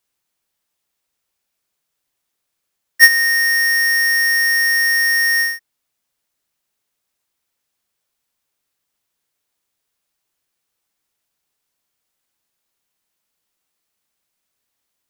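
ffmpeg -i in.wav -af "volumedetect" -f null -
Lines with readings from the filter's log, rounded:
mean_volume: -22.3 dB
max_volume: -2.4 dB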